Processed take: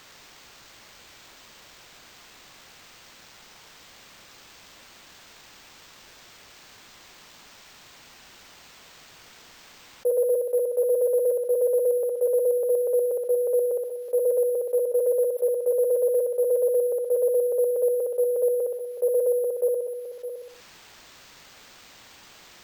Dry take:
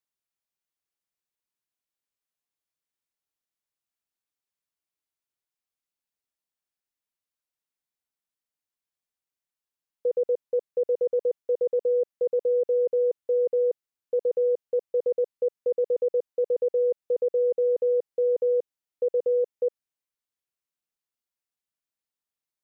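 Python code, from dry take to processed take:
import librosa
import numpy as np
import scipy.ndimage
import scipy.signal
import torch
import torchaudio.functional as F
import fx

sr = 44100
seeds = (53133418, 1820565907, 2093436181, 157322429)

p1 = fx.echo_feedback(x, sr, ms=62, feedback_pct=35, wet_db=-3.0)
p2 = fx.level_steps(p1, sr, step_db=23)
p3 = p1 + F.gain(torch.from_numpy(p2), -2.5).numpy()
p4 = scipy.signal.sosfilt(scipy.signal.butter(2, 710.0, 'highpass', fs=sr, output='sos'), p3)
p5 = np.repeat(p4[::4], 4)[:len(p4)]
p6 = p5 + fx.echo_single(p5, sr, ms=612, db=-22.0, dry=0)
p7 = fx.env_flatten(p6, sr, amount_pct=50)
y = F.gain(torch.from_numpy(p7), 4.5).numpy()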